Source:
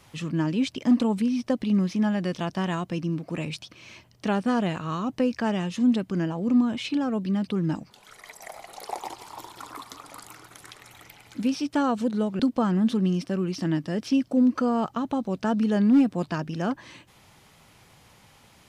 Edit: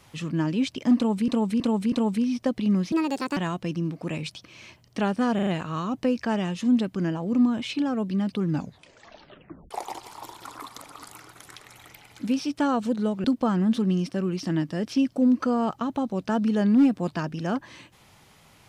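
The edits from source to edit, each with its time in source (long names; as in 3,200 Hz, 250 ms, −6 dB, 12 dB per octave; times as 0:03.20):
0:00.96–0:01.28: repeat, 4 plays
0:01.96–0:02.64: play speed 152%
0:04.62: stutter 0.04 s, 4 plays
0:07.65: tape stop 1.21 s
0:09.93–0:10.18: reverse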